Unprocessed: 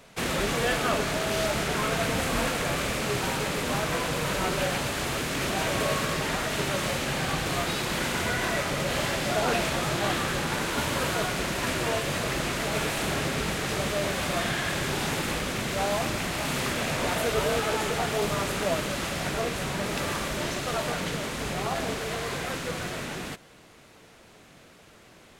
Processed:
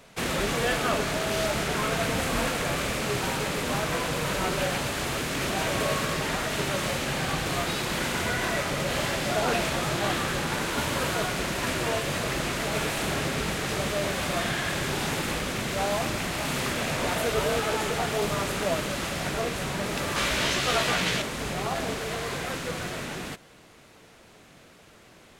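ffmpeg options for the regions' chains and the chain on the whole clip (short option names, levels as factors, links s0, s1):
-filter_complex "[0:a]asettb=1/sr,asplit=3[s0][s1][s2];[s0]atrim=end=20.164[s3];[s1]atrim=start=20.16:end=21.22,asetpts=PTS-STARTPTS,afade=t=in:d=0.004:c=qsin,afade=t=out:st=1.056:d=0.004:c=qsin,equalizer=f=3100:w=0.53:g=7,asplit=2[s4][s5];[s5]adelay=16,volume=0.708[s6];[s4][s6]amix=inputs=2:normalize=0,atrim=end_sample=46746[s7];[s2]atrim=start=21.216[s8];[s3][s7]acrossfade=d=0.004:c1=hsin:c2=qsin[s9];[s9][s8]acrossfade=d=0.004:c1=qsin:c2=hsin"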